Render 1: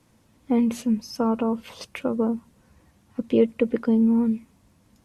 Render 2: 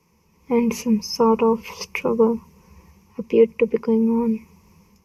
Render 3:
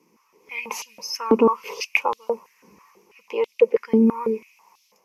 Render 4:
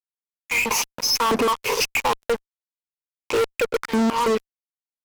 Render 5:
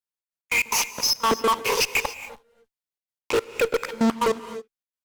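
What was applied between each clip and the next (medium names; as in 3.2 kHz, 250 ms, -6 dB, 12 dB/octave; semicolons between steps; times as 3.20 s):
rippled EQ curve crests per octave 0.8, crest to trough 15 dB; level rider gain up to 9 dB; trim -3.5 dB
step-sequenced high-pass 6.1 Hz 280–3600 Hz; trim -1 dB
compression 3:1, threshold -22 dBFS, peak gain reduction 10 dB; fuzz box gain 36 dB, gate -40 dBFS; trim -4 dB
trance gate "xx.x.x.xx" 146 bpm -24 dB; on a send at -13 dB: reverberation, pre-delay 3 ms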